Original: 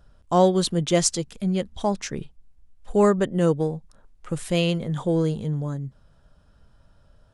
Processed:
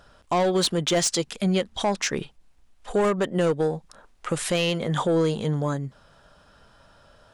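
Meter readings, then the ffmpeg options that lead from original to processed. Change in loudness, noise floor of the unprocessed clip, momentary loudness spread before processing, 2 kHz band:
-1.0 dB, -58 dBFS, 14 LU, +4.5 dB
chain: -filter_complex "[0:a]asplit=2[a][b];[b]highpass=f=720:p=1,volume=18dB,asoftclip=type=tanh:threshold=-6dB[c];[a][c]amix=inputs=2:normalize=0,lowpass=f=6.2k:p=1,volume=-6dB,alimiter=limit=-15.5dB:level=0:latency=1:release=220"

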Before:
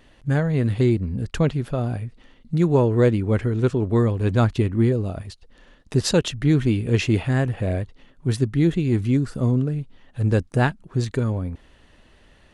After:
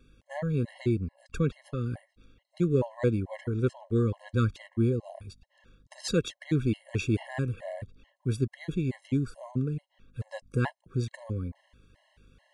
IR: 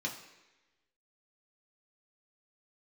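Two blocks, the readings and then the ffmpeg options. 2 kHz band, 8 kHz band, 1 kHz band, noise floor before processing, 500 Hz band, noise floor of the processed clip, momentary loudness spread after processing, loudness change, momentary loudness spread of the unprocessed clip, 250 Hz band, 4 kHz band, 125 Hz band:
-9.5 dB, -10.0 dB, -11.0 dB, -55 dBFS, -9.0 dB, -75 dBFS, 12 LU, -9.0 dB, 10 LU, -9.0 dB, -10.0 dB, -9.5 dB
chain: -af "aeval=exprs='val(0)+0.00224*(sin(2*PI*50*n/s)+sin(2*PI*2*50*n/s)/2+sin(2*PI*3*50*n/s)/3+sin(2*PI*4*50*n/s)/4+sin(2*PI*5*50*n/s)/5)':c=same,afftfilt=real='re*gt(sin(2*PI*2.3*pts/sr)*(1-2*mod(floor(b*sr/1024/550),2)),0)':imag='im*gt(sin(2*PI*2.3*pts/sr)*(1-2*mod(floor(b*sr/1024/550),2)),0)':win_size=1024:overlap=0.75,volume=-6.5dB"

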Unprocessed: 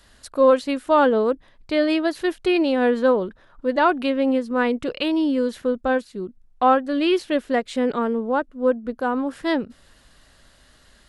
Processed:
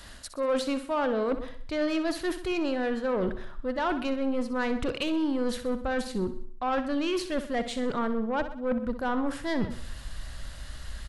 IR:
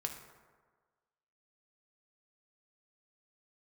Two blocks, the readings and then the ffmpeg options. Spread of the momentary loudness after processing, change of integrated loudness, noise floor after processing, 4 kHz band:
10 LU, -8.5 dB, -42 dBFS, -5.5 dB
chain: -filter_complex "[0:a]equalizer=f=430:w=3.9:g=-4,asplit=2[a][b];[b]adelay=134.1,volume=-28dB,highshelf=f=4k:g=-3.02[c];[a][c]amix=inputs=2:normalize=0,areverse,acompressor=threshold=-29dB:ratio=16,areverse,asoftclip=type=tanh:threshold=-28.5dB,asplit=2[d][e];[e]aecho=0:1:63|126|189|252|315:0.266|0.125|0.0588|0.0276|0.013[f];[d][f]amix=inputs=2:normalize=0,asubboost=boost=3.5:cutoff=130,volume=7.5dB"

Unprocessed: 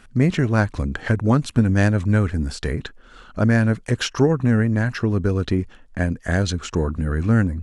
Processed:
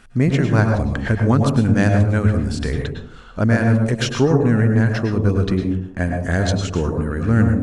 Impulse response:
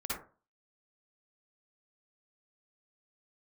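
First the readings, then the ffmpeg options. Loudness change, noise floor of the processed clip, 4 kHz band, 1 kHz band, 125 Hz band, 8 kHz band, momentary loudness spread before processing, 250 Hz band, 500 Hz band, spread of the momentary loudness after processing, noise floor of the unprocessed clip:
+2.5 dB, -40 dBFS, +1.5 dB, +3.0 dB, +3.0 dB, +1.0 dB, 8 LU, +2.5 dB, +3.0 dB, 8 LU, -48 dBFS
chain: -filter_complex "[0:a]asplit=2[a][b];[1:a]atrim=start_sample=2205,asetrate=22491,aresample=44100[c];[b][c]afir=irnorm=-1:irlink=0,volume=-8dB[d];[a][d]amix=inputs=2:normalize=0,volume=-2dB"

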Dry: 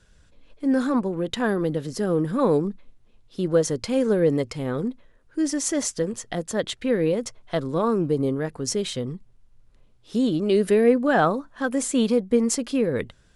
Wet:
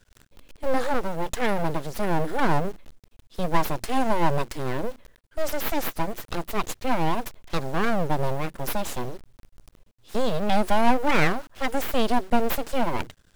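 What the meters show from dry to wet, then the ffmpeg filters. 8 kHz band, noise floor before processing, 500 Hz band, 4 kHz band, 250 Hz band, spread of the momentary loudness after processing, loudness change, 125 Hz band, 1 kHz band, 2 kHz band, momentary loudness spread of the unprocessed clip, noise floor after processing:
-8.5 dB, -57 dBFS, -5.5 dB, -0.5 dB, -6.0 dB, 10 LU, -3.0 dB, -1.5 dB, +5.5 dB, +2.5 dB, 9 LU, -61 dBFS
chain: -af "acrusher=bits=9:dc=4:mix=0:aa=0.000001,aeval=exprs='abs(val(0))':c=same,volume=1.5dB"

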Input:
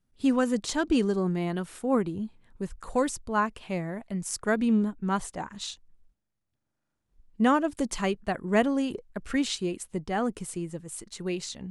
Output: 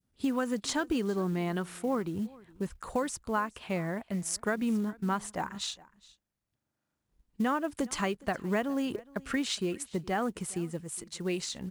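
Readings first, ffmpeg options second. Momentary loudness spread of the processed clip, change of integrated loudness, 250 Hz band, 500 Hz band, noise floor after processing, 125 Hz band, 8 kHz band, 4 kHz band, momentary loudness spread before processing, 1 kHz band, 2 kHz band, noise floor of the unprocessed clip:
7 LU, -4.0 dB, -5.0 dB, -4.5 dB, -85 dBFS, -2.5 dB, -1.0 dB, -1.0 dB, 13 LU, -4.0 dB, -2.5 dB, -81 dBFS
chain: -af "highpass=47,adynamicequalizer=threshold=0.00891:dfrequency=1400:dqfactor=0.74:tfrequency=1400:tqfactor=0.74:attack=5:release=100:ratio=0.375:range=2:mode=boostabove:tftype=bell,acompressor=threshold=-27dB:ratio=5,acrusher=bits=7:mode=log:mix=0:aa=0.000001,aecho=1:1:414:0.075"

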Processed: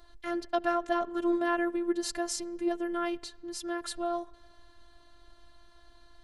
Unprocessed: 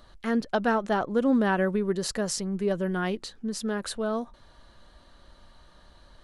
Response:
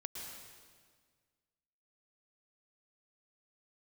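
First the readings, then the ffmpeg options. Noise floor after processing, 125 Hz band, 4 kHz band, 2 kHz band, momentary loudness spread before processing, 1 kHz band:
-58 dBFS, under -25 dB, -3.5 dB, -5.0 dB, 9 LU, -2.5 dB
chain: -filter_complex "[0:a]asplit=2[a][b];[1:a]atrim=start_sample=2205,asetrate=66150,aresample=44100,lowpass=3.9k[c];[b][c]afir=irnorm=-1:irlink=0,volume=-16.5dB[d];[a][d]amix=inputs=2:normalize=0,afftfilt=real='hypot(re,im)*cos(PI*b)':imag='0':win_size=512:overlap=0.75"

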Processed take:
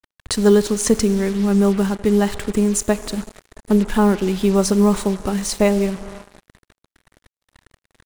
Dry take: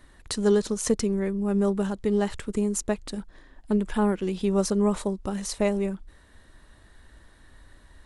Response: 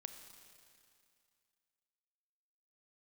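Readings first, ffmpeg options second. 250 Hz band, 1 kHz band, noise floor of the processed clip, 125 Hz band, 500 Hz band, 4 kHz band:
+8.5 dB, +8.0 dB, under -85 dBFS, +8.5 dB, +7.5 dB, +9.0 dB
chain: -filter_complex "[0:a]asplit=2[a][b];[1:a]atrim=start_sample=2205[c];[b][c]afir=irnorm=-1:irlink=0,volume=0dB[d];[a][d]amix=inputs=2:normalize=0,adynamicequalizer=threshold=0.0158:dfrequency=530:dqfactor=2.2:tfrequency=530:tqfactor=2.2:attack=5:release=100:ratio=0.375:range=2.5:mode=cutabove:tftype=bell,acrusher=bits=5:mix=0:aa=0.5,volume=4.5dB"

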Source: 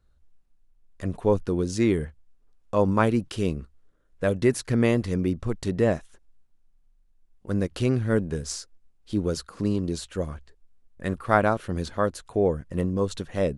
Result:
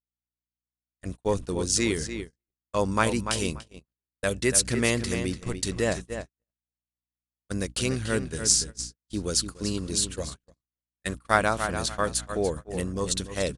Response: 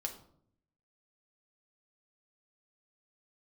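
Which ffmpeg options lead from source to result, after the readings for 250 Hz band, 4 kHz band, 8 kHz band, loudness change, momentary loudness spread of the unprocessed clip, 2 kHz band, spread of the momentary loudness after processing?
-5.0 dB, +9.5 dB, +14.0 dB, -1.0 dB, 10 LU, +3.0 dB, 14 LU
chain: -filter_complex "[0:a]asplit=2[a][b];[b]adelay=291,lowpass=f=4.7k:p=1,volume=-8dB,asplit=2[c][d];[d]adelay=291,lowpass=f=4.7k:p=1,volume=0.28,asplit=2[e][f];[f]adelay=291,lowpass=f=4.7k:p=1,volume=0.28[g];[c][e][g]amix=inputs=3:normalize=0[h];[a][h]amix=inputs=2:normalize=0,aresample=22050,aresample=44100,crystalizer=i=9.5:c=0,aeval=exprs='val(0)+0.0224*(sin(2*PI*60*n/s)+sin(2*PI*2*60*n/s)/2+sin(2*PI*3*60*n/s)/3+sin(2*PI*4*60*n/s)/4+sin(2*PI*5*60*n/s)/5)':c=same,agate=range=-58dB:threshold=-26dB:ratio=16:detection=peak,volume=-6dB"

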